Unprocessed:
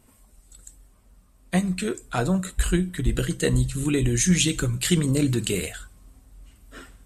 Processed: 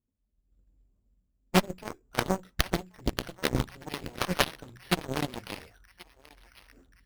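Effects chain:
low-pass that shuts in the quiet parts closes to 380 Hz, open at −17 dBFS
high-shelf EQ 4,500 Hz +6 dB
automatic gain control gain up to 14 dB
log-companded quantiser 8 bits
harmonic generator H 3 −9 dB, 4 −32 dB, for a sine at −0.5 dBFS
on a send: feedback echo with a band-pass in the loop 1,082 ms, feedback 62%, band-pass 1,800 Hz, level −17.5 dB
on the sum: bad sample-rate conversion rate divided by 6×, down none, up hold
highs frequency-modulated by the lows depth 0.62 ms
level −2 dB

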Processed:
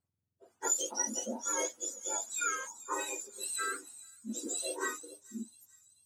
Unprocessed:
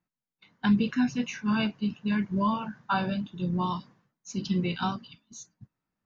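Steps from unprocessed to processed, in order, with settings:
frequency axis turned over on the octave scale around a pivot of 1,200 Hz
0:01.04–0:01.59: low-shelf EQ 140 Hz +8.5 dB
0:02.68–0:02.99: gain on a spectral selection 1,400–4,600 Hz −13 dB
delay with a high-pass on its return 439 ms, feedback 47%, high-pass 4,800 Hz, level −13 dB
level −3 dB

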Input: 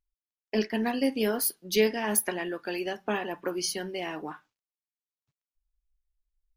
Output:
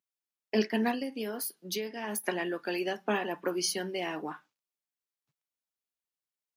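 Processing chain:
high-pass filter 140 Hz 24 dB per octave
0:00.92–0:02.24: downward compressor 10 to 1, threshold −32 dBFS, peak gain reduction 14.5 dB

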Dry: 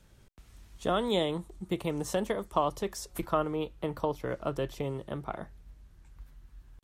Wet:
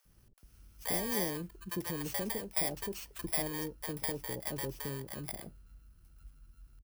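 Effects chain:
samples in bit-reversed order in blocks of 32 samples
multiband delay without the direct sound highs, lows 50 ms, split 650 Hz
level −4.5 dB

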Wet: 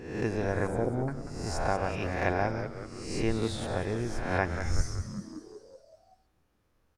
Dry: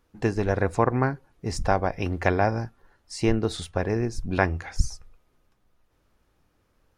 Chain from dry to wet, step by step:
peak hold with a rise ahead of every peak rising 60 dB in 0.82 s
0:00.67–0:01.08: inverse Chebyshev band-stop filter 1,400–4,300 Hz, stop band 50 dB
echo with shifted repeats 188 ms, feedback 58%, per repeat −110 Hz, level −9.5 dB
level −8 dB

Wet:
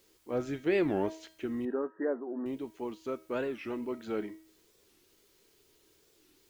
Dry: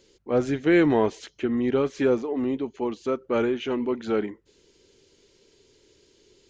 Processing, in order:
bit-depth reduction 10 bits, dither triangular
0:01.65–0:02.46: linear-phase brick-wall band-pass 170–1,900 Hz
tuned comb filter 320 Hz, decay 0.5 s, harmonics all, mix 70%
wow of a warped record 45 rpm, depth 250 cents

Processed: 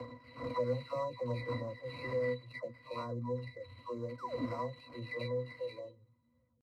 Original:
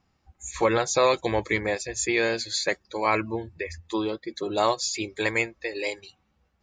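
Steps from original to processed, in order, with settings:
every frequency bin delayed by itself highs early, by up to 536 ms
high-shelf EQ 2,000 Hz +5 dB
pitch shifter +1.5 semitones
sound drawn into the spectrogram fall, 0:04.18–0:04.45, 220–1,600 Hz −28 dBFS
sample-rate reduction 6,800 Hz, jitter 20%
dynamic equaliser 3,000 Hz, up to −4 dB, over −43 dBFS, Q 1.1
resonances in every octave B, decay 0.12 s
multiband upward and downward compressor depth 40%
level −1 dB

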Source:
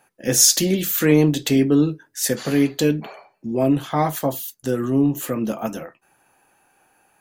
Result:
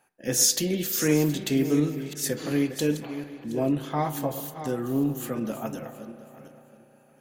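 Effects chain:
feedback delay that plays each chunk backwards 360 ms, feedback 41%, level −11 dB
spring reverb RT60 3.9 s, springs 34 ms, chirp 35 ms, DRR 12.5 dB
level −7 dB

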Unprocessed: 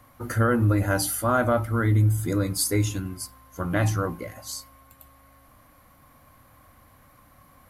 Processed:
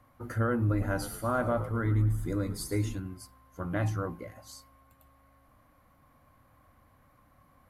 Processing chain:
high-shelf EQ 3,000 Hz −9 dB
0:00.56–0:02.95: echo with shifted repeats 111 ms, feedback 48%, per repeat −75 Hz, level −12.5 dB
level −6.5 dB

